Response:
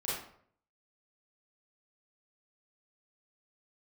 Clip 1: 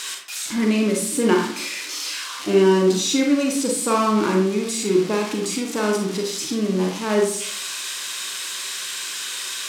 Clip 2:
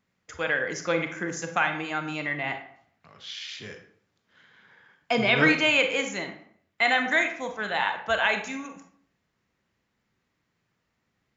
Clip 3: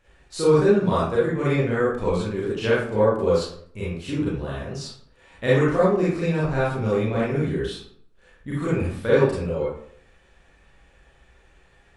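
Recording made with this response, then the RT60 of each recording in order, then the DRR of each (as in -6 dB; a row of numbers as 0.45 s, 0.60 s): 3; 0.60 s, 0.60 s, 0.60 s; 0.5 dB, 5.5 dB, -9.0 dB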